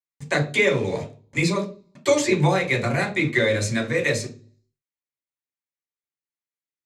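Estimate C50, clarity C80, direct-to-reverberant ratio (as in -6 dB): 12.0 dB, 17.5 dB, -0.5 dB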